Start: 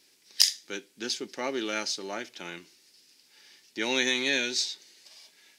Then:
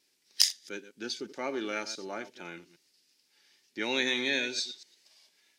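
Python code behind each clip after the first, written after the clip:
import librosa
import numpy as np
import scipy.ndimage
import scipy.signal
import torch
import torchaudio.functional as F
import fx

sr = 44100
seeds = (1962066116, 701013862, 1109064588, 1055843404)

y = fx.reverse_delay(x, sr, ms=115, wet_db=-13.0)
y = fx.wow_flutter(y, sr, seeds[0], rate_hz=2.1, depth_cents=29.0)
y = fx.noise_reduce_blind(y, sr, reduce_db=7)
y = y * 10.0 ** (-2.5 / 20.0)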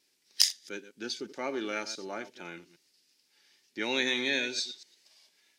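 y = x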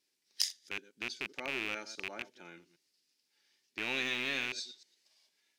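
y = fx.rattle_buzz(x, sr, strikes_db=-44.0, level_db=-15.0)
y = y * 10.0 ** (-8.5 / 20.0)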